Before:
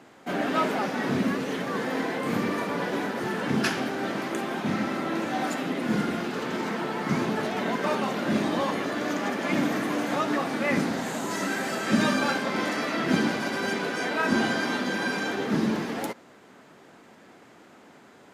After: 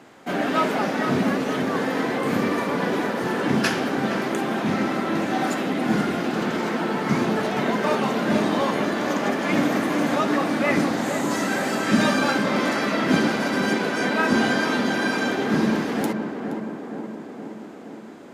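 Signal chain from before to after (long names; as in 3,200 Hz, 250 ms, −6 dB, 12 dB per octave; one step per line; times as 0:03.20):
tape delay 470 ms, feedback 77%, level −5 dB, low-pass 1,300 Hz
level +3.5 dB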